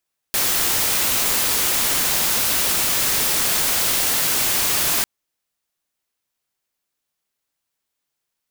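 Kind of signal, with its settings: noise white, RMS -19.5 dBFS 4.70 s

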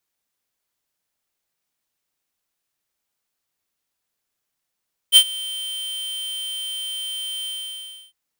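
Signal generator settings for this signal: ADSR square 3120 Hz, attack 44 ms, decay 69 ms, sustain -21 dB, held 2.34 s, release 0.665 s -8 dBFS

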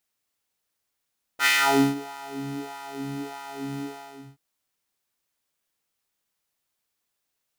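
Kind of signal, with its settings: synth patch with filter wobble C#3, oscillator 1 square, oscillator 2 square, interval +12 st, oscillator 2 level -2 dB, sub -15 dB, noise -17 dB, filter highpass, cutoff 210 Hz, Q 2.4, filter envelope 2.5 oct, filter decay 0.56 s, attack 65 ms, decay 0.49 s, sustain -23.5 dB, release 0.57 s, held 2.41 s, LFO 1.6 Hz, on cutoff 1.2 oct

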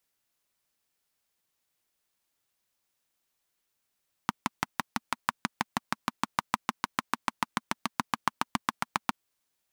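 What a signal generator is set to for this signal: single-cylinder engine model, changing speed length 4.82 s, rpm 700, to 900, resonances 230/1000 Hz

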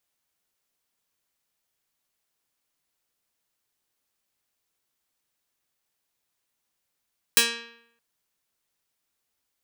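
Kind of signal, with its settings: plucked string A#3, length 0.62 s, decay 0.75 s, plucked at 0.32, medium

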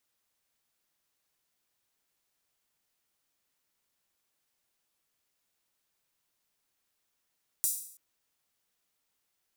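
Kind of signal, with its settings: open hi-hat length 0.33 s, high-pass 8100 Hz, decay 0.61 s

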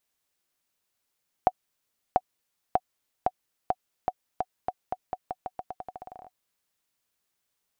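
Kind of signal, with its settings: bouncing ball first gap 0.69 s, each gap 0.86, 740 Hz, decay 46 ms -7.5 dBFS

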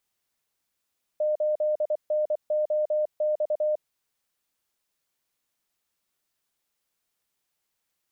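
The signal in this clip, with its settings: Morse "8NOX" 24 wpm 608 Hz -21.5 dBFS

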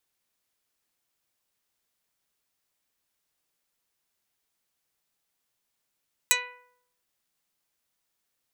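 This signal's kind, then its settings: plucked string B4, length 0.71 s, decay 0.73 s, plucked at 0.1, dark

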